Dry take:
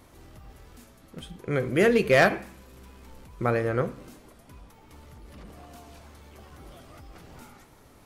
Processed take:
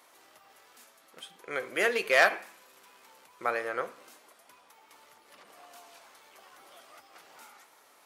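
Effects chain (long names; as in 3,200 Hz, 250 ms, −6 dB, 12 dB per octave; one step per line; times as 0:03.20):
high-pass filter 730 Hz 12 dB per octave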